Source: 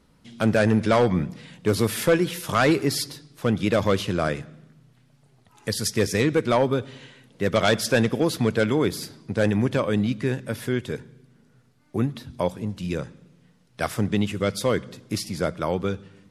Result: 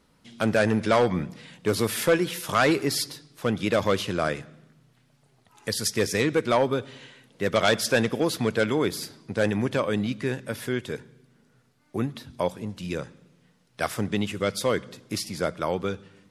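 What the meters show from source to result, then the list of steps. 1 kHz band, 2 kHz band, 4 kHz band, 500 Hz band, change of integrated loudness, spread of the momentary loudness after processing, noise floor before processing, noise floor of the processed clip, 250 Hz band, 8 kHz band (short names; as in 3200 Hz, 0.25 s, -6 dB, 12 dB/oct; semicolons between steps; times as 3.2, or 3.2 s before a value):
-0.5 dB, 0.0 dB, 0.0 dB, -1.5 dB, -2.0 dB, 11 LU, -59 dBFS, -64 dBFS, -3.5 dB, 0.0 dB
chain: low shelf 270 Hz -6.5 dB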